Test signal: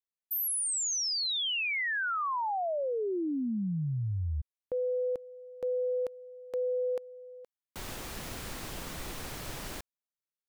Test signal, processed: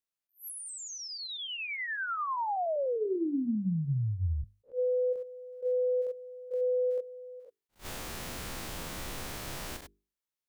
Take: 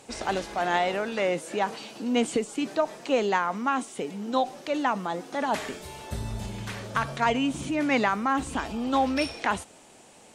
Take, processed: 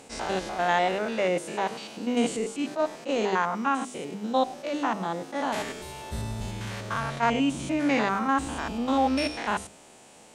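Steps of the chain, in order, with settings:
spectrum averaged block by block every 100 ms
mains-hum notches 50/100/150/200/250/300/350/400/450 Hz
level that may rise only so fast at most 290 dB per second
level +2.5 dB

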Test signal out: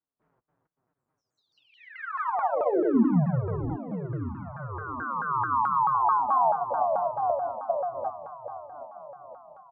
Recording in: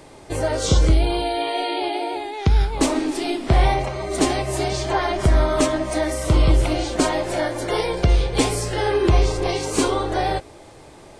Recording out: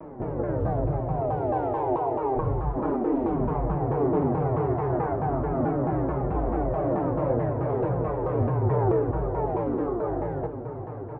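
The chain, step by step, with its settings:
spectrum averaged block by block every 200 ms
downward compressor 6 to 1, threshold −30 dBFS
delay with pitch and tempo change per echo 309 ms, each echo +2 semitones, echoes 3
high-pass filter 53 Hz
low-shelf EQ 380 Hz +6.5 dB
comb filter 7.2 ms, depth 93%
feedback echo with a long and a short gap by turns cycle 1,265 ms, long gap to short 1.5 to 1, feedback 35%, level −12 dB
flanger 0.31 Hz, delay 3.8 ms, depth 6.4 ms, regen −39%
low-pass filter 1,300 Hz 24 dB per octave
pitch modulation by a square or saw wave saw down 4.6 Hz, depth 250 cents
level +3.5 dB

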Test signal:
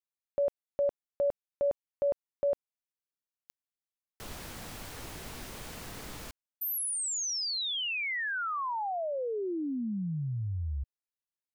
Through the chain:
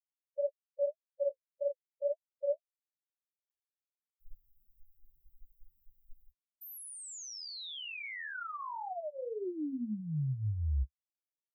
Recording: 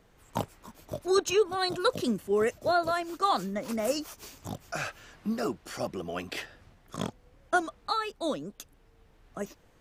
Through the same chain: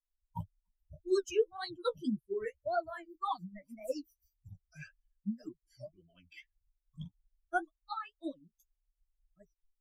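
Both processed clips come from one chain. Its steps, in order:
spectral dynamics exaggerated over time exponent 3
flanger 1.8 Hz, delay 7.1 ms, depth 9 ms, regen +20%
spectral tilt −2 dB per octave
level −1.5 dB

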